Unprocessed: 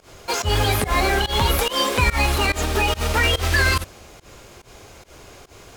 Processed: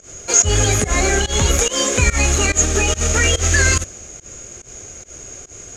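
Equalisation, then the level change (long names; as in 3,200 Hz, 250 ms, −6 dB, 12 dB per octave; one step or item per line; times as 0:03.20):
low-pass with resonance 6,700 Hz, resonance Q 15
parametric band 940 Hz −12 dB 0.54 octaves
parametric band 4,400 Hz −8.5 dB 1.3 octaves
+4.0 dB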